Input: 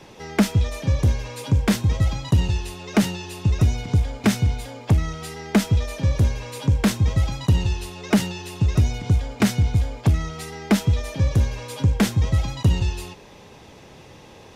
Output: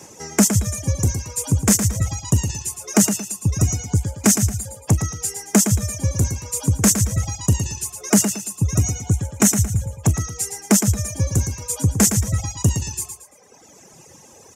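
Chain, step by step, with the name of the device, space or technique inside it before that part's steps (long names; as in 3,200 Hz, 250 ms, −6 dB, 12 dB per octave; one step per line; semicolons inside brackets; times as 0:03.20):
reverb reduction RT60 1.8 s
budget condenser microphone (high-pass filter 79 Hz; high shelf with overshoot 5,100 Hz +11 dB, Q 3)
0:08.52–0:10.18: notch filter 4,800 Hz, Q 6.3
reverb reduction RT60 0.85 s
repeating echo 113 ms, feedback 33%, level −8 dB
level +2 dB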